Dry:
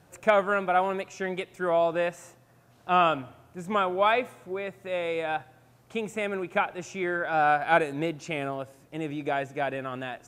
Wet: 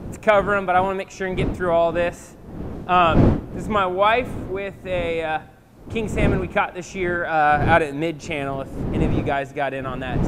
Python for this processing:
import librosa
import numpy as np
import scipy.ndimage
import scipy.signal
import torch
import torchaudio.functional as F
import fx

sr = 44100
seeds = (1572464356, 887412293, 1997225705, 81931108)

y = fx.dmg_wind(x, sr, seeds[0], corner_hz=270.0, level_db=-32.0)
y = y * librosa.db_to_amplitude(5.5)